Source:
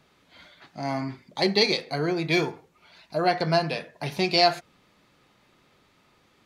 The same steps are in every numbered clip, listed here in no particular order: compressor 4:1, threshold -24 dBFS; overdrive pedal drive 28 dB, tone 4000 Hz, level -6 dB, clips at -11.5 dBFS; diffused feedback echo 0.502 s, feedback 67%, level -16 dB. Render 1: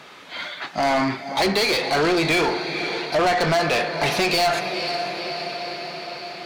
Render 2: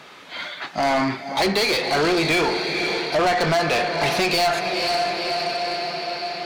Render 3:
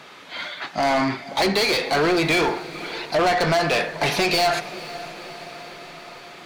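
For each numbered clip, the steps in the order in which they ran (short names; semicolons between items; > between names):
compressor > diffused feedback echo > overdrive pedal; diffused feedback echo > compressor > overdrive pedal; compressor > overdrive pedal > diffused feedback echo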